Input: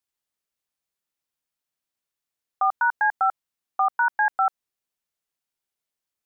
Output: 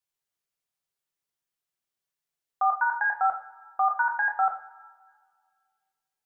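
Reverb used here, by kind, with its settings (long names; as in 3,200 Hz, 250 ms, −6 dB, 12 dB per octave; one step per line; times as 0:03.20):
coupled-rooms reverb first 0.45 s, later 1.9 s, from −20 dB, DRR 0.5 dB
level −4.5 dB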